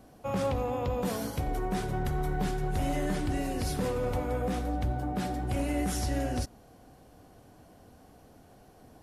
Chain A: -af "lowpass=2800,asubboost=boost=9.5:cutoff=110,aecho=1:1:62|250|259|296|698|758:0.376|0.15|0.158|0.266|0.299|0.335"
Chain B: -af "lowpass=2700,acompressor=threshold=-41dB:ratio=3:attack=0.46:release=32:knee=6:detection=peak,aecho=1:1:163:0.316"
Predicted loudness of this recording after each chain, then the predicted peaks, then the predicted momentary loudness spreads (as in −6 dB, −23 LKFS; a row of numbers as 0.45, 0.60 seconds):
−21.5, −41.5 LKFS; −6.0, −32.0 dBFS; 11, 15 LU